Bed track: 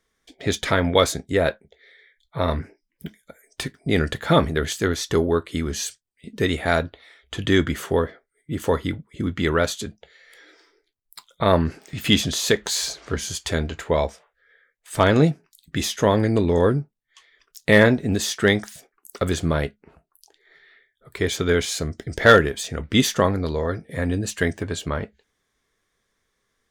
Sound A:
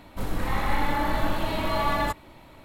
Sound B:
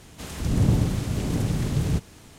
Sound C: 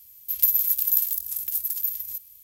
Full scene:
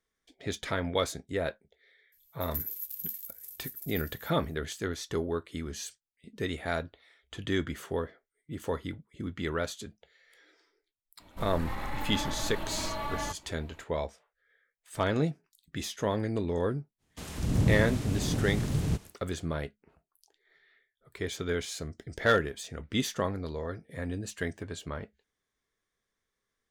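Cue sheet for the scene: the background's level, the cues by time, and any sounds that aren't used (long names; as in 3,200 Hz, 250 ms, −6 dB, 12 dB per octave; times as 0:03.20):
bed track −11.5 dB
0:02.12: mix in C −16 dB
0:11.20: mix in A −8.5 dB + brickwall limiter −16.5 dBFS
0:16.98: mix in B −5 dB, fades 0.05 s + noise gate with hold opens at −35 dBFS, closes at −41 dBFS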